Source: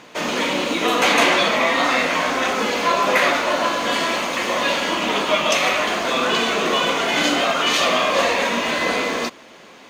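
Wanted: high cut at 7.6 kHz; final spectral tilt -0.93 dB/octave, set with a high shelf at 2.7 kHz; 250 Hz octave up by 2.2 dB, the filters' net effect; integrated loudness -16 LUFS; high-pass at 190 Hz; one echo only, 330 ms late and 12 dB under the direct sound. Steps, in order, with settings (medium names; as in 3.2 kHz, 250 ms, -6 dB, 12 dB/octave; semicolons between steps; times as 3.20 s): high-pass 190 Hz; low-pass 7.6 kHz; peaking EQ 250 Hz +4 dB; treble shelf 2.7 kHz -6.5 dB; delay 330 ms -12 dB; trim +3.5 dB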